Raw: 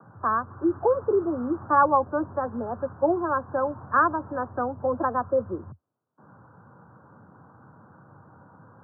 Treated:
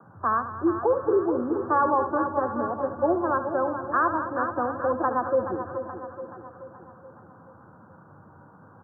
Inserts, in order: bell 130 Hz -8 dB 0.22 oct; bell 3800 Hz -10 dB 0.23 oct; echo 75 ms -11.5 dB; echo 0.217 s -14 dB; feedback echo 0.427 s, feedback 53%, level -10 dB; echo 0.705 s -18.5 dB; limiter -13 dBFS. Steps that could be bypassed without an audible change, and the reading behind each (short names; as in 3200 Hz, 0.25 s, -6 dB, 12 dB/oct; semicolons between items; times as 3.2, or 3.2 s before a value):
bell 3800 Hz: input band ends at 1800 Hz